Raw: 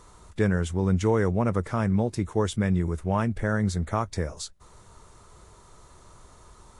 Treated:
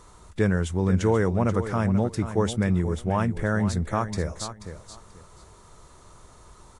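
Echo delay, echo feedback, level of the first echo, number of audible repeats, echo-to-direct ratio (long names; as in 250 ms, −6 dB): 484 ms, 21%, −11.0 dB, 2, −11.0 dB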